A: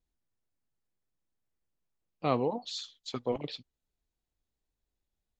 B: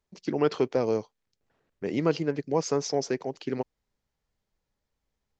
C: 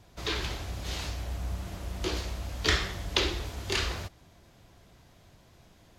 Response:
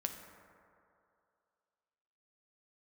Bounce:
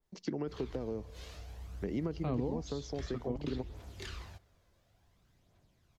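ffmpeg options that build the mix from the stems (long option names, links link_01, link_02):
-filter_complex "[0:a]volume=0dB[link_01];[1:a]bandreject=frequency=2500:width=12,acompressor=threshold=-29dB:ratio=3,volume=-2dB,asplit=2[link_02][link_03];[link_03]volume=-18dB[link_04];[2:a]aphaser=in_gain=1:out_gain=1:delay=2:decay=0.42:speed=0.57:type=triangular,adelay=300,volume=-16dB,asplit=2[link_05][link_06];[link_06]volume=-19dB[link_07];[3:a]atrim=start_sample=2205[link_08];[link_04][link_07]amix=inputs=2:normalize=0[link_09];[link_09][link_08]afir=irnorm=-1:irlink=0[link_10];[link_01][link_02][link_05][link_10]amix=inputs=4:normalize=0,acrossover=split=320[link_11][link_12];[link_12]acompressor=threshold=-42dB:ratio=5[link_13];[link_11][link_13]amix=inputs=2:normalize=0,adynamicequalizer=threshold=0.00141:dfrequency=2300:dqfactor=0.7:tfrequency=2300:tqfactor=0.7:attack=5:release=100:ratio=0.375:range=2.5:mode=cutabove:tftype=highshelf"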